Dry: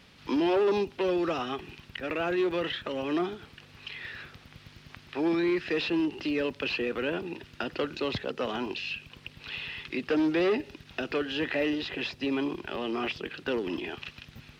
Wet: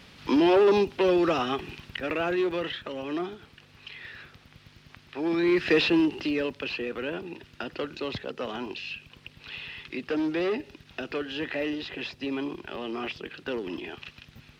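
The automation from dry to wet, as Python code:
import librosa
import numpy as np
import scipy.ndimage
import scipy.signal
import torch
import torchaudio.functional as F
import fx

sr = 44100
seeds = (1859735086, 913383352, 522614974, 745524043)

y = fx.gain(x, sr, db=fx.line((1.72, 5.0), (2.97, -2.5), (5.2, -2.5), (5.7, 8.0), (6.68, -2.0)))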